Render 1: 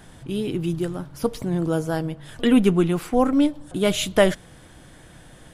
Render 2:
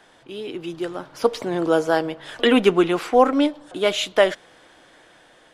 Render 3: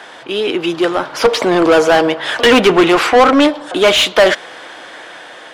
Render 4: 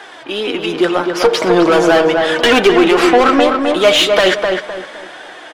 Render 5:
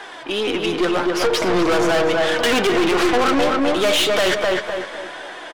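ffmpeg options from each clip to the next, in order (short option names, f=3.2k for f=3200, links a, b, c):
-filter_complex "[0:a]acrossover=split=330 6200:gain=0.0794 1 0.2[a][b][c];[a][b][c]amix=inputs=3:normalize=0,dynaudnorm=f=380:g=5:m=11.5dB,volume=-1dB"
-filter_complex "[0:a]asplit=2[a][b];[b]highpass=f=720:p=1,volume=26dB,asoftclip=type=tanh:threshold=-1.5dB[c];[a][c]amix=inputs=2:normalize=0,lowpass=f=3.5k:p=1,volume=-6dB,volume=1dB"
-filter_complex "[0:a]flanger=delay=2.4:depth=4.3:regen=40:speed=0.38:shape=triangular,asplit=2[a][b];[b]adelay=256,lowpass=f=2.4k:p=1,volume=-4.5dB,asplit=2[c][d];[d]adelay=256,lowpass=f=2.4k:p=1,volume=0.34,asplit=2[e][f];[f]adelay=256,lowpass=f=2.4k:p=1,volume=0.34,asplit=2[g][h];[h]adelay=256,lowpass=f=2.4k:p=1,volume=0.34[i];[c][e][g][i]amix=inputs=4:normalize=0[j];[a][j]amix=inputs=2:normalize=0,alimiter=level_in=4.5dB:limit=-1dB:release=50:level=0:latency=1,volume=-1dB"
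-af "aeval=exprs='(tanh(5.62*val(0)+0.3)-tanh(0.3))/5.62':c=same,aeval=exprs='val(0)+0.00447*sin(2*PI*1000*n/s)':c=same,aecho=1:1:242|484|726:0.2|0.0678|0.0231"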